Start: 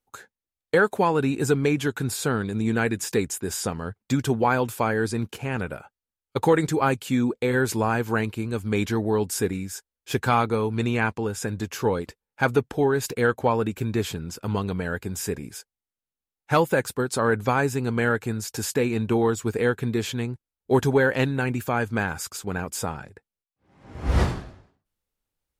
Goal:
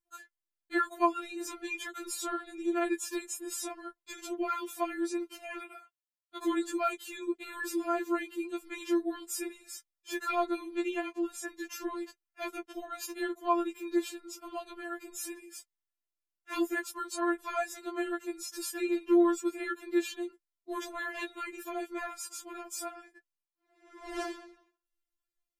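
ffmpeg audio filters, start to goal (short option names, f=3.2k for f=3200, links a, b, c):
-filter_complex "[0:a]asettb=1/sr,asplit=3[a][b][c];[a]atrim=end=5.584[d];[b]atrim=start=5.58:end=6.39,asetpts=PTS-STARTPTS,afade=t=in:d=0.004:c=qsin,afade=t=out:st=0.806:d=0.004:c=qsin,highpass=f=610:p=1[e];[c]atrim=start=6.386[f];[d][e]acrossfade=d=0.004:c1=hsin:c2=qsin[g];[g][f]acrossfade=d=0.004:c1=qsin:c2=hsin,afftfilt=real='re*4*eq(mod(b,16),0)':imag='im*4*eq(mod(b,16),0)':win_size=2048:overlap=0.75,volume=-5.5dB"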